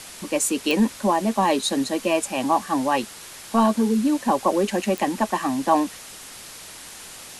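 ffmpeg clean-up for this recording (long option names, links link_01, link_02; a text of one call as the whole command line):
ffmpeg -i in.wav -af "adeclick=threshold=4,afwtdn=0.013" out.wav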